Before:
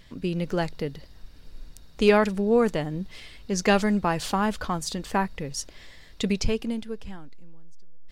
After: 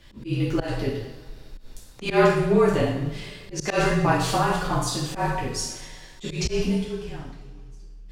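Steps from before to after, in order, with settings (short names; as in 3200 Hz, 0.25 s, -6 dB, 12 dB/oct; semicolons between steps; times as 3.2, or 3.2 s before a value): two-slope reverb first 0.73 s, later 2.6 s, from -20 dB, DRR -6.5 dB; auto swell 0.124 s; frequency shift -37 Hz; gain -3 dB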